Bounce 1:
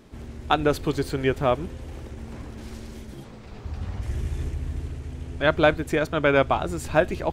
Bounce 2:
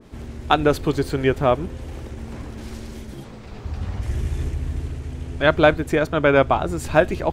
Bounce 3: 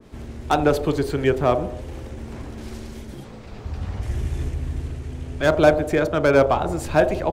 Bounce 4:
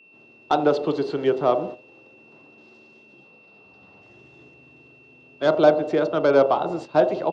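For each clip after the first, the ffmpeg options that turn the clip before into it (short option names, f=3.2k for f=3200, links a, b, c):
-af "adynamicequalizer=threshold=0.0141:dfrequency=1800:dqfactor=0.7:tfrequency=1800:tqfactor=0.7:attack=5:release=100:ratio=0.375:range=2:mode=cutabove:tftype=highshelf,volume=4dB"
-filter_complex "[0:a]acrossover=split=310|880[a][b][c];[b]aecho=1:1:40|86|138.9|199.7|269.7:0.631|0.398|0.251|0.158|0.1[d];[c]asoftclip=type=hard:threshold=-19.5dB[e];[a][d][e]amix=inputs=3:normalize=0,volume=-1dB"
-af "highpass=f=180:w=0.5412,highpass=f=180:w=1.3066,equalizer=f=230:t=q:w=4:g=-8,equalizer=f=1.7k:t=q:w=4:g=-9,equalizer=f=2.4k:t=q:w=4:g=-10,lowpass=f=4.8k:w=0.5412,lowpass=f=4.8k:w=1.3066,agate=range=-13dB:threshold=-32dB:ratio=16:detection=peak,aeval=exprs='val(0)+0.00282*sin(2*PI*2700*n/s)':c=same"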